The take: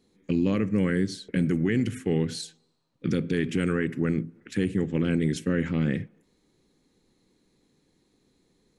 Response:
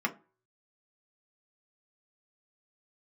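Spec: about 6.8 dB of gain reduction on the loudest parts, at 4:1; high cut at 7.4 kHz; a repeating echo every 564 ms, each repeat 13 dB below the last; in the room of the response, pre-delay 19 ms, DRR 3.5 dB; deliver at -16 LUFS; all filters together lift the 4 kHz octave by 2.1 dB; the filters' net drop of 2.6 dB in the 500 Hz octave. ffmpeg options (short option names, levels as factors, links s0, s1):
-filter_complex "[0:a]lowpass=7400,equalizer=f=500:t=o:g=-3.5,equalizer=f=4000:t=o:g=3,acompressor=threshold=0.0355:ratio=4,aecho=1:1:564|1128|1692:0.224|0.0493|0.0108,asplit=2[s0][s1];[1:a]atrim=start_sample=2205,adelay=19[s2];[s1][s2]afir=irnorm=-1:irlink=0,volume=0.266[s3];[s0][s3]amix=inputs=2:normalize=0,volume=5.96"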